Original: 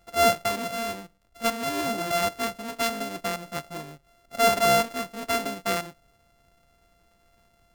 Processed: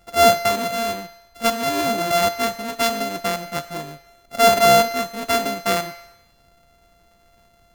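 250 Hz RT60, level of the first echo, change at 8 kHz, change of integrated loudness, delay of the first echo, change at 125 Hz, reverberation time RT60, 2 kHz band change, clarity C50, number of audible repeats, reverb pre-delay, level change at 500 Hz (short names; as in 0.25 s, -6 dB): 1.0 s, none, +6.0 dB, +6.5 dB, none, +5.5 dB, 1.0 s, +5.5 dB, 13.5 dB, none, 13 ms, +7.5 dB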